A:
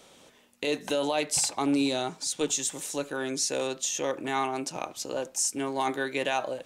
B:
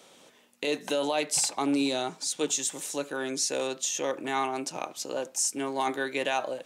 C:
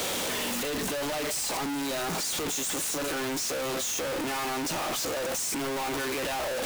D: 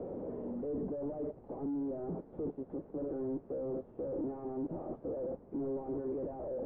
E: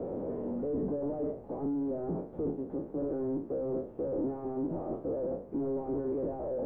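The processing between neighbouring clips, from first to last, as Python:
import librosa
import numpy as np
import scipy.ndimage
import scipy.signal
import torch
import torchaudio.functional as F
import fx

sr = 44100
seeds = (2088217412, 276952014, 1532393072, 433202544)

y1 = scipy.signal.sosfilt(scipy.signal.bessel(2, 170.0, 'highpass', norm='mag', fs=sr, output='sos'), x)
y2 = np.sign(y1) * np.sqrt(np.mean(np.square(y1)))
y3 = fx.ladder_lowpass(y2, sr, hz=600.0, resonance_pct=25)
y3 = F.gain(torch.from_numpy(y3), 1.0).numpy()
y4 = fx.spec_trails(y3, sr, decay_s=0.42)
y4 = F.gain(torch.from_numpy(y4), 3.5).numpy()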